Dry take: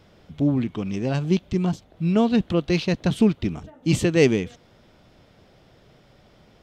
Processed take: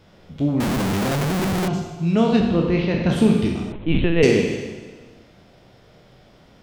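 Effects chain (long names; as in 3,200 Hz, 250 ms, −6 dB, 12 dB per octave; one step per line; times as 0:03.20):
peak hold with a decay on every bin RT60 0.44 s
0:02.39–0:03.08: low-pass filter 1,500 Hz → 3,100 Hz 12 dB per octave
four-comb reverb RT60 1.4 s, combs from 32 ms, DRR 2.5 dB
0:00.60–0:01.68: comparator with hysteresis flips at −32 dBFS
0:03.72–0:04.23: linear-prediction vocoder at 8 kHz pitch kept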